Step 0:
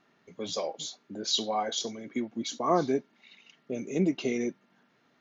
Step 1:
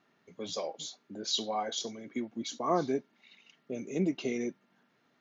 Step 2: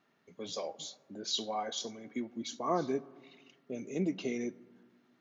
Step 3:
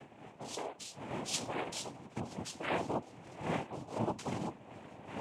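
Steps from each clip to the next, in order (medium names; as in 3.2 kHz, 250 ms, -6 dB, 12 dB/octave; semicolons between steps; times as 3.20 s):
high-pass 53 Hz; trim -3.5 dB
reverberation RT60 1.6 s, pre-delay 6 ms, DRR 17.5 dB; trim -2.5 dB
wind noise 570 Hz -42 dBFS; shuffle delay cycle 1299 ms, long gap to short 3:1, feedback 36%, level -22 dB; noise-vocoded speech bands 4; trim -3 dB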